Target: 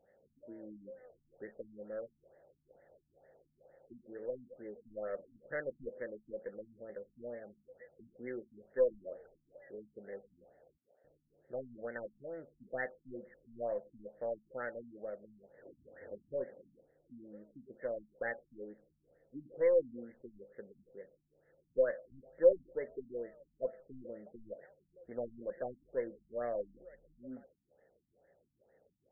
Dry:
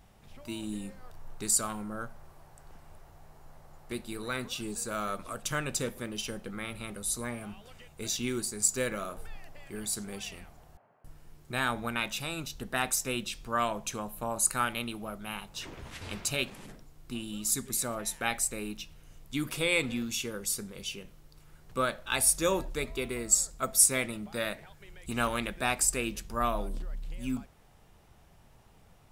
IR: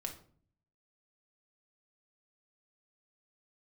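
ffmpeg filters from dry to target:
-filter_complex "[0:a]asplit=3[link_01][link_02][link_03];[link_01]bandpass=frequency=530:width_type=q:width=8,volume=0dB[link_04];[link_02]bandpass=frequency=1840:width_type=q:width=8,volume=-6dB[link_05];[link_03]bandpass=frequency=2480:width_type=q:width=8,volume=-9dB[link_06];[link_04][link_05][link_06]amix=inputs=3:normalize=0,aeval=exprs='0.0891*(cos(1*acos(clip(val(0)/0.0891,-1,1)))-cos(1*PI/2))+0.000891*(cos(3*acos(clip(val(0)/0.0891,-1,1)))-cos(3*PI/2))+0.00141*(cos(8*acos(clip(val(0)/0.0891,-1,1)))-cos(8*PI/2))':channel_layout=same,afftfilt=real='re*lt(b*sr/1024,280*pow(2200/280,0.5+0.5*sin(2*PI*2.2*pts/sr)))':imag='im*lt(b*sr/1024,280*pow(2200/280,0.5+0.5*sin(2*PI*2.2*pts/sr)))':win_size=1024:overlap=0.75,volume=7dB"

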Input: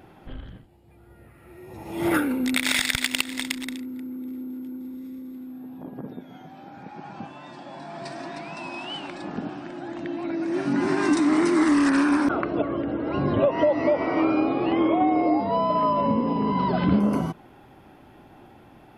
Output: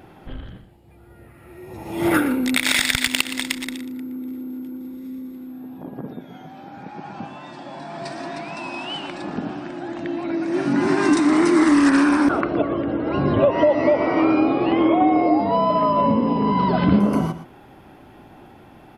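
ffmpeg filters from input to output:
ffmpeg -i in.wav -af "aecho=1:1:119:0.237,volume=4dB" out.wav

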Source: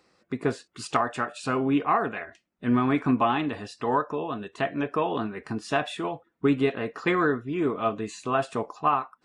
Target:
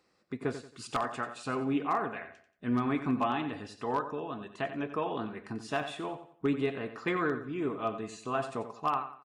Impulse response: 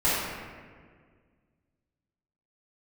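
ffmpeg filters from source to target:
-af "aecho=1:1:90|180|270|360:0.282|0.093|0.0307|0.0101,aeval=exprs='0.237*(abs(mod(val(0)/0.237+3,4)-2)-1)':channel_layout=same,volume=-7dB"

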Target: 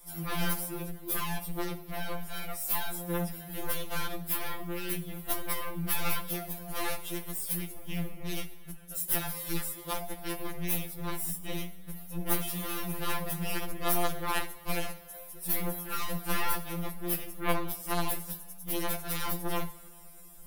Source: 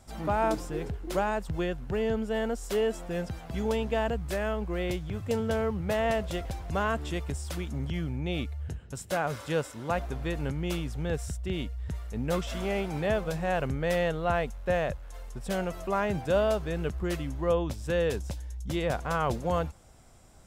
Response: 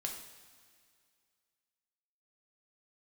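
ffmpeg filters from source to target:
-filter_complex "[0:a]equalizer=frequency=380:width=0.32:gain=-5,aeval=exprs='0.133*(cos(1*acos(clip(val(0)/0.133,-1,1)))-cos(1*PI/2))+0.0106*(cos(3*acos(clip(val(0)/0.133,-1,1)))-cos(3*PI/2))+0.0299*(cos(4*acos(clip(val(0)/0.133,-1,1)))-cos(4*PI/2))+0.0596*(cos(7*acos(clip(val(0)/0.133,-1,1)))-cos(7*PI/2))':channel_layout=same,aexciter=amount=12.9:drive=3.7:freq=10000,asplit=2[link_01][link_02];[1:a]atrim=start_sample=2205,lowshelf=frequency=88:gain=7.5[link_03];[link_02][link_03]afir=irnorm=-1:irlink=0,volume=-5dB[link_04];[link_01][link_04]amix=inputs=2:normalize=0,afftfilt=real='re*2.83*eq(mod(b,8),0)':imag='im*2.83*eq(mod(b,8),0)':win_size=2048:overlap=0.75,volume=-7dB"

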